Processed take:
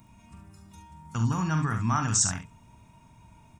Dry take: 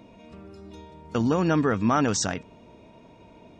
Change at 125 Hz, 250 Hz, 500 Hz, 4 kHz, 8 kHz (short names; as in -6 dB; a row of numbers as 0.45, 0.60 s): +2.5, -7.0, -17.5, -1.5, +5.5 dB